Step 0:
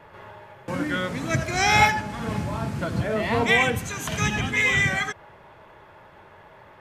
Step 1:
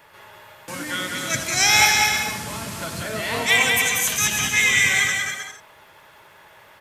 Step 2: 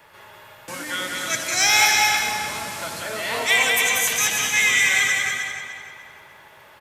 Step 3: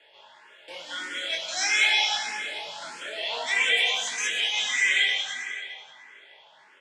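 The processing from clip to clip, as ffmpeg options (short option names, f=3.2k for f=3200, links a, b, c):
-af "lowshelf=f=140:g=-4,aecho=1:1:190|313.5|393.8|446|479.9:0.631|0.398|0.251|0.158|0.1,crystalizer=i=8.5:c=0,volume=-7dB"
-filter_complex "[0:a]acrossover=split=330|4900[a][b][c];[a]acompressor=threshold=-44dB:ratio=6[d];[d][b][c]amix=inputs=3:normalize=0,asoftclip=type=tanh:threshold=-6dB,asplit=2[e][f];[f]adelay=298,lowpass=f=4.5k:p=1,volume=-7.5dB,asplit=2[g][h];[h]adelay=298,lowpass=f=4.5k:p=1,volume=0.43,asplit=2[i][j];[j]adelay=298,lowpass=f=4.5k:p=1,volume=0.43,asplit=2[k][l];[l]adelay=298,lowpass=f=4.5k:p=1,volume=0.43,asplit=2[m][n];[n]adelay=298,lowpass=f=4.5k:p=1,volume=0.43[o];[e][g][i][k][m][o]amix=inputs=6:normalize=0"
-filter_complex "[0:a]flanger=delay=19.5:depth=4.5:speed=0.47,highpass=380,equalizer=f=1.2k:t=q:w=4:g=-9,equalizer=f=3.2k:t=q:w=4:g=8,equalizer=f=6k:t=q:w=4:g=-5,lowpass=f=7k:w=0.5412,lowpass=f=7k:w=1.3066,asplit=2[a][b];[b]afreqshift=1.6[c];[a][c]amix=inputs=2:normalize=1"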